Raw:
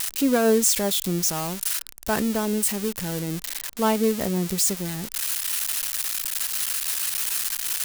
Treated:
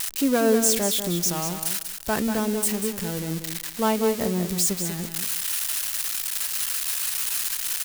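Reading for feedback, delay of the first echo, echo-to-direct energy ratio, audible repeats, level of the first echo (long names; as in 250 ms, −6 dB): 19%, 191 ms, −8.0 dB, 2, −8.0 dB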